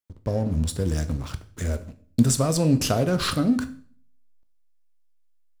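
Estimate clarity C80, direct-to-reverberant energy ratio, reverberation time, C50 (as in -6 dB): 19.0 dB, 10.0 dB, 0.50 s, 15.5 dB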